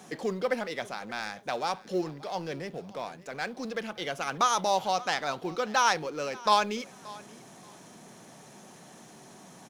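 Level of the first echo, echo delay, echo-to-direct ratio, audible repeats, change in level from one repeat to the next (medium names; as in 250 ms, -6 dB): -21.0 dB, 579 ms, -21.0 dB, 2, -13.5 dB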